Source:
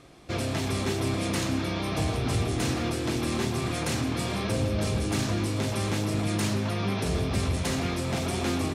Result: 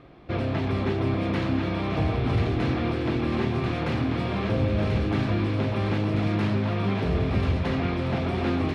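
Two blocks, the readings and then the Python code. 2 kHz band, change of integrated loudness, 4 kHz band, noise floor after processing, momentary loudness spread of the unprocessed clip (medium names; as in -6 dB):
+1.0 dB, +2.5 dB, -4.5 dB, -28 dBFS, 2 LU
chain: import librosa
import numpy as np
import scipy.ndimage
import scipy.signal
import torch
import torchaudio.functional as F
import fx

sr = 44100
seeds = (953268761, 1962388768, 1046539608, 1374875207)

y = fx.air_absorb(x, sr, metres=370.0)
y = fx.echo_wet_highpass(y, sr, ms=1038, feedback_pct=49, hz=1800.0, wet_db=-3.0)
y = y * 10.0 ** (3.5 / 20.0)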